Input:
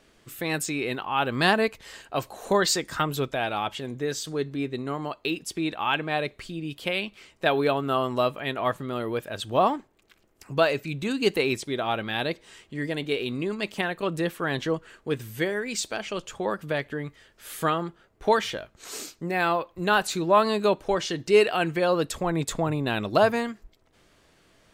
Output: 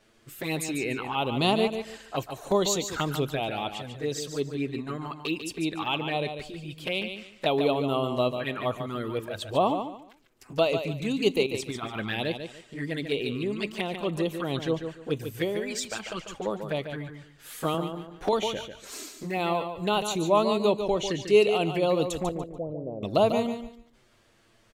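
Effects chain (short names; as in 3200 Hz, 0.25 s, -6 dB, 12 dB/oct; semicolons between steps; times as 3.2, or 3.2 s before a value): 11.46–12.19 negative-ratio compressor -29 dBFS, ratio -0.5; envelope flanger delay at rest 9.5 ms, full sweep at -23.5 dBFS; 22.29–23.03 ladder low-pass 600 Hz, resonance 70%; feedback echo 0.145 s, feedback 25%, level -8 dB; 17.74–18.33 three-band squash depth 70%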